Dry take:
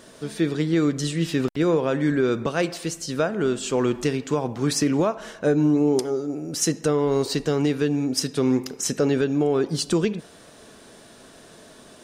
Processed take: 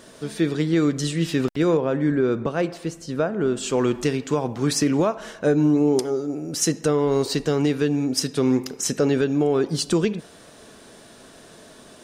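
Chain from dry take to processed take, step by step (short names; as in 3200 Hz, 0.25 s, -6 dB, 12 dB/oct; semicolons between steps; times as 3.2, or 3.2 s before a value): 1.77–3.57 high shelf 2200 Hz -11 dB; gain +1 dB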